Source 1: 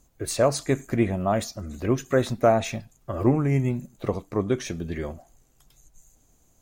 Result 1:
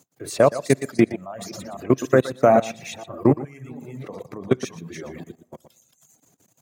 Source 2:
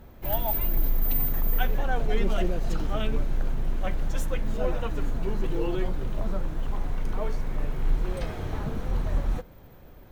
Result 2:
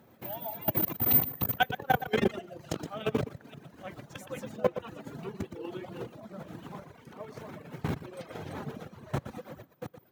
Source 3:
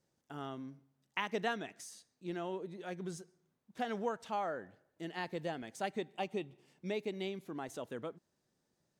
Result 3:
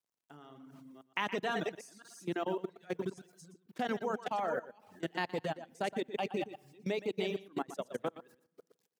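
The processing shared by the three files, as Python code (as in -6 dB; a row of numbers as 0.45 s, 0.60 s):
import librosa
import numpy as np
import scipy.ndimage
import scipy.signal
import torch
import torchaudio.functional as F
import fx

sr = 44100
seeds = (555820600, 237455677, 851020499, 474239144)

p1 = fx.reverse_delay(x, sr, ms=253, wet_db=-7)
p2 = fx.quant_dither(p1, sr, seeds[0], bits=12, dither='none')
p3 = fx.rev_spring(p2, sr, rt60_s=1.1, pass_ms=(53,), chirp_ms=60, drr_db=13.0)
p4 = fx.level_steps(p3, sr, step_db=20)
p5 = scipy.signal.sosfilt(scipy.signal.butter(4, 120.0, 'highpass', fs=sr, output='sos'), p4)
p6 = p5 + fx.echo_single(p5, sr, ms=118, db=-8.0, dry=0)
p7 = fx.dereverb_blind(p6, sr, rt60_s=0.83)
y = p7 * 10.0 ** (7.5 / 20.0)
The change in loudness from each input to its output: +4.5 LU, -1.0 LU, +3.5 LU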